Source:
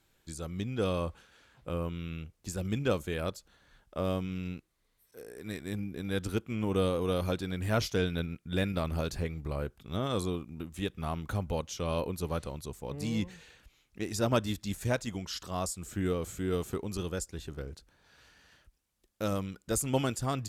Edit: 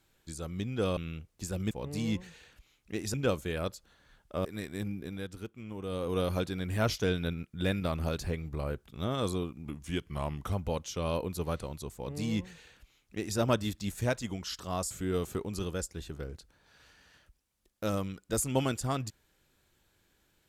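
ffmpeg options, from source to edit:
-filter_complex "[0:a]asplit=10[a][b][c][d][e][f][g][h][i][j];[a]atrim=end=0.972[k];[b]atrim=start=2.018:end=2.762[l];[c]atrim=start=12.778:end=14.212[m];[d]atrim=start=2.758:end=4.072[n];[e]atrim=start=5.368:end=6.2,asetpts=PTS-STARTPTS,afade=t=out:st=0.552:d=0.28:silence=0.316228[o];[f]atrim=start=6.2:end=6.8,asetpts=PTS-STARTPTS,volume=-10dB[p];[g]atrim=start=6.8:end=10.574,asetpts=PTS-STARTPTS,afade=t=in:d=0.28:silence=0.316228[q];[h]atrim=start=10.57:end=11.36,asetpts=PTS-STARTPTS,asetrate=39690,aresample=44100[r];[i]atrim=start=11.356:end=15.742[s];[j]atrim=start=16.288[t];[k][l]acrossfade=d=0.004:c1=hsin:c2=hsin[u];[u][m]acrossfade=d=0.004:c1=hsin:c2=hsin[v];[v][n]acrossfade=d=0.004:c1=hsin:c2=hsin[w];[o][p][q]concat=n=3:v=0:a=1[x];[w][x]acrossfade=d=0.004:c1=hsin:c2=hsin[y];[y][r]acrossfade=d=0.004:c1=hsin:c2=hsin[z];[z][s]acrossfade=d=0.004:c1=hsin:c2=hsin[aa];[aa][t]acrossfade=d=0.004:c1=hsin:c2=hsin"

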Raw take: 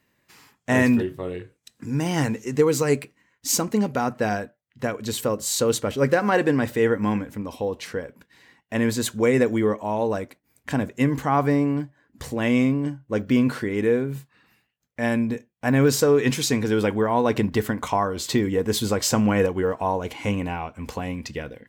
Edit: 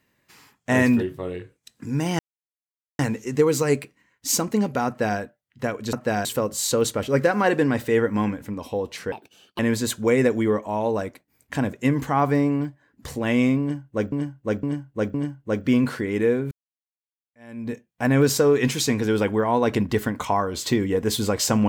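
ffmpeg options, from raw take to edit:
-filter_complex "[0:a]asplit=10[a][b][c][d][e][f][g][h][i][j];[a]atrim=end=2.19,asetpts=PTS-STARTPTS,afade=t=out:st=2.186:d=0.004:c=hsin,apad=pad_dur=0.8[k];[b]atrim=start=2.19:end=5.132,asetpts=PTS-STARTPTS,afade=t=in:d=0.004:c=hsin[l];[c]atrim=start=4.068:end=4.392[m];[d]atrim=start=5.128:end=8.004[n];[e]atrim=start=8:end=8.75,asetpts=PTS-STARTPTS,asetrate=70119,aresample=44100[o];[f]atrim=start=8.746:end=13.282[p];[g]atrim=start=12.768:end=13.282[q];[h]atrim=start=12.768:end=13.282[r];[i]atrim=start=12.768:end=14.14,asetpts=PTS-STARTPTS,afade=t=out:st=1.368:d=0.004:c=hsin[s];[j]atrim=start=14.14,asetpts=PTS-STARTPTS,afade=t=in:d=1.21:c=exp[t];[k][l]concat=n=2:v=0:a=1[u];[u][m]acrossfade=d=0.004:c1=hsin:c2=hsin[v];[v][n]acrossfade=d=0.004:c1=hsin:c2=hsin[w];[w][o]acrossfade=d=0.004:c1=hsin:c2=hsin[x];[x][p]acrossfade=d=0.004:c1=hsin:c2=hsin[y];[y][q]acrossfade=d=0.004:c1=hsin:c2=hsin[z];[z][r]acrossfade=d=0.004:c1=hsin:c2=hsin[aa];[s][t]concat=n=2:v=0:a=1[ab];[aa][ab]acrossfade=d=0.004:c1=hsin:c2=hsin"

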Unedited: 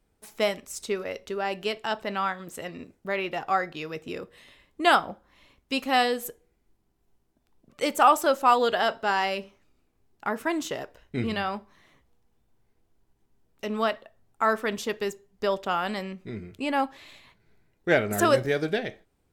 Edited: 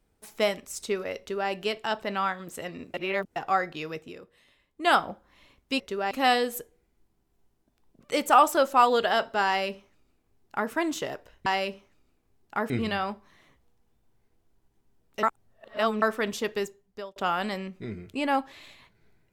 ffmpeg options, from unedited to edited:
-filter_complex "[0:a]asplit=12[a][b][c][d][e][f][g][h][i][j][k][l];[a]atrim=end=2.942[m];[b]atrim=start=2.938:end=3.362,asetpts=PTS-STARTPTS,areverse[n];[c]atrim=start=3.358:end=4.14,asetpts=PTS-STARTPTS,afade=t=out:st=0.562:d=0.22:silence=0.334965[o];[d]atrim=start=4.14:end=4.76,asetpts=PTS-STARTPTS,volume=-9.5dB[p];[e]atrim=start=4.76:end=5.802,asetpts=PTS-STARTPTS,afade=t=in:d=0.22:silence=0.334965[q];[f]atrim=start=1.188:end=1.502[r];[g]atrim=start=5.798:end=11.152[s];[h]atrim=start=9.158:end=10.402[t];[i]atrim=start=11.148:end=13.682[u];[j]atrim=start=13.678:end=14.472,asetpts=PTS-STARTPTS,areverse[v];[k]atrim=start=14.468:end=15.61,asetpts=PTS-STARTPTS,afade=t=out:st=0.582:d=0.56[w];[l]atrim=start=15.61,asetpts=PTS-STARTPTS,afade=t=in:d=0.004:c=hsin[x];[m][n]acrossfade=d=0.004:c1=hsin:c2=hsin[y];[o][p][q]concat=n=3:v=0:a=1[z];[y][z]acrossfade=d=0.004:c1=hsin:c2=hsin[aa];[aa][r]acrossfade=d=0.004:c1=hsin:c2=hsin[ab];[ab][s]acrossfade=d=0.004:c1=hsin:c2=hsin[ac];[ac][t]acrossfade=d=0.004:c1=hsin:c2=hsin[ad];[ad][u]acrossfade=d=0.004:c1=hsin:c2=hsin[ae];[ae][v]acrossfade=d=0.004:c1=hsin:c2=hsin[af];[w][x]concat=n=2:v=0:a=1[ag];[af][ag]acrossfade=d=0.004:c1=hsin:c2=hsin"

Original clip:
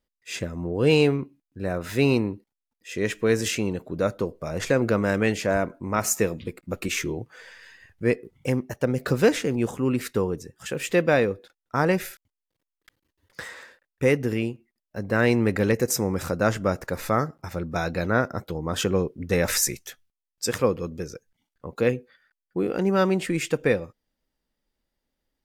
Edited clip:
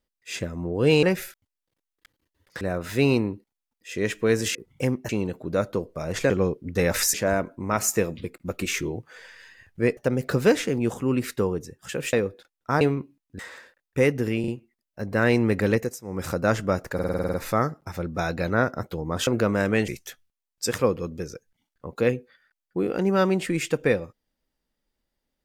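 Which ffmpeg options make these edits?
-filter_complex "[0:a]asplit=25[a][b][c][d][e][f][g][h][i][j][k][l][m][n][o][p][q][r][s][t][u][v][w][x][y];[a]atrim=end=1.032[z];[b]atrim=start=11.858:end=13.442[aa];[c]atrim=start=1.608:end=3.552[ab];[d]atrim=start=8.198:end=8.742[ac];[e]atrim=start=3.548:end=4.762[ad];[f]atrim=start=18.838:end=19.682[ae];[g]atrim=start=5.368:end=8.202[af];[h]atrim=start=8.738:end=10.902[ag];[i]atrim=start=11.178:end=11.862[ah];[j]atrim=start=1.028:end=1.612[ai];[k]atrim=start=13.438:end=14.492[aj];[l]atrim=start=14.448:end=14.492[ak];[m]atrim=start=14.448:end=15.96,asetpts=PTS-STARTPTS,afade=t=out:st=1.272:d=0.24:silence=0.0841395[al];[n]atrim=start=15.96:end=15.99,asetpts=PTS-STARTPTS,volume=-21.5dB[am];[o]atrim=start=15.99:end=16.962,asetpts=PTS-STARTPTS,afade=t=in:d=0.24:silence=0.0841395[an];[p]atrim=start=16.908:end=16.962[ao];[q]atrim=start=16.908:end=16.962[ap];[r]atrim=start=16.908:end=16.962[aq];[s]atrim=start=16.908:end=16.962[ar];[t]atrim=start=16.908:end=16.962[as];[u]atrim=start=16.908:end=16.962[at];[v]atrim=start=16.908:end=16.962[au];[w]atrim=start=16.908:end=18.842[av];[x]atrim=start=4.758:end=5.372[aw];[y]atrim=start=19.678[ax];[z][aa]acrossfade=d=0.004:c1=hsin:c2=hsin[ay];[ay][ab]acrossfade=d=0.004:c1=hsin:c2=hsin[az];[az][ac]acrossfade=d=0.004:c1=hsin:c2=hsin[ba];[ba][ad]acrossfade=d=0.004:c1=hsin:c2=hsin[bb];[bb][ae]acrossfade=d=0.004:c1=hsin:c2=hsin[bc];[bc][af]acrossfade=d=0.004:c1=hsin:c2=hsin[bd];[bd][ag]acrossfade=d=0.004:c1=hsin:c2=hsin[be];[be][ah]acrossfade=d=0.004:c1=hsin:c2=hsin[bf];[bf][ai]acrossfade=d=0.004:c1=hsin:c2=hsin[bg];[bg][aj]acrossfade=d=0.004:c1=hsin:c2=hsin[bh];[bh][ak]acrossfade=d=0.004:c1=hsin:c2=hsin[bi];[al][am][an]concat=n=3:v=0:a=1[bj];[bi][bj]acrossfade=d=0.004:c1=hsin:c2=hsin[bk];[bk][ao]acrossfade=d=0.004:c1=hsin:c2=hsin[bl];[bl][ap]acrossfade=d=0.004:c1=hsin:c2=hsin[bm];[bm][aq]acrossfade=d=0.004:c1=hsin:c2=hsin[bn];[bn][ar]acrossfade=d=0.004:c1=hsin:c2=hsin[bo];[bo][as]acrossfade=d=0.004:c1=hsin:c2=hsin[bp];[bp][at]acrossfade=d=0.004:c1=hsin:c2=hsin[bq];[bq][au]acrossfade=d=0.004:c1=hsin:c2=hsin[br];[br][av]acrossfade=d=0.004:c1=hsin:c2=hsin[bs];[bs][aw]acrossfade=d=0.004:c1=hsin:c2=hsin[bt];[bt][ax]acrossfade=d=0.004:c1=hsin:c2=hsin"

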